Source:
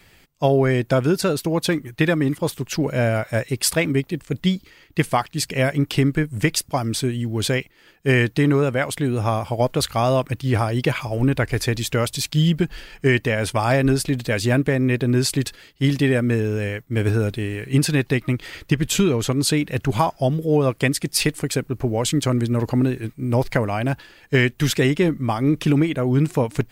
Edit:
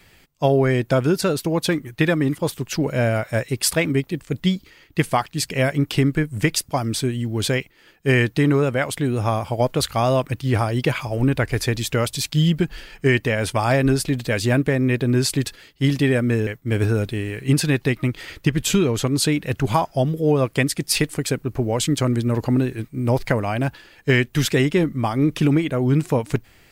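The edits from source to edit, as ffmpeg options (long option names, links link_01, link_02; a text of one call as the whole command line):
ffmpeg -i in.wav -filter_complex "[0:a]asplit=2[link_01][link_02];[link_01]atrim=end=16.472[link_03];[link_02]atrim=start=16.718[link_04];[link_03][link_04]acrossfade=duration=0.004:curve1=hsin:curve2=hsin" out.wav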